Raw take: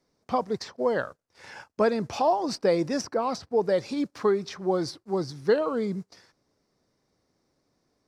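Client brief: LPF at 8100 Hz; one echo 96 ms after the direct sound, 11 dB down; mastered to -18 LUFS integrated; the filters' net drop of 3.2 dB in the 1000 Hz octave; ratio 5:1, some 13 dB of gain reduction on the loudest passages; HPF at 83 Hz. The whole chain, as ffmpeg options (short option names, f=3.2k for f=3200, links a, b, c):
-af "highpass=83,lowpass=8.1k,equalizer=f=1k:t=o:g=-4.5,acompressor=threshold=-34dB:ratio=5,aecho=1:1:96:0.282,volume=20dB"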